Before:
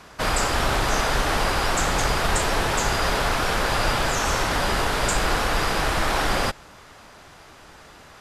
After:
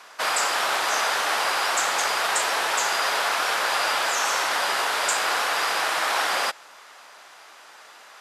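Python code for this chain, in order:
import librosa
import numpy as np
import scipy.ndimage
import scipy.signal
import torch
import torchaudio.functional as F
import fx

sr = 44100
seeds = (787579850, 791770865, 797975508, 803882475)

y = scipy.signal.sosfilt(scipy.signal.butter(2, 710.0, 'highpass', fs=sr, output='sos'), x)
y = y * 10.0 ** (1.5 / 20.0)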